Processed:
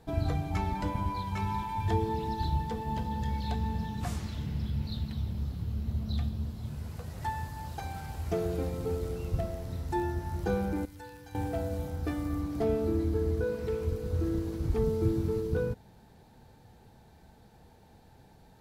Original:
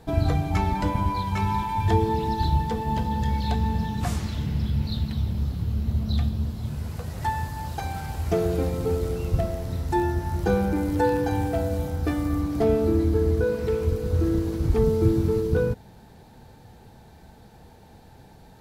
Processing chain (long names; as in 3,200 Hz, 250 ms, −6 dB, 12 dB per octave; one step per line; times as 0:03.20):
0:10.85–0:11.35: guitar amp tone stack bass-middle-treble 5-5-5
level −7.5 dB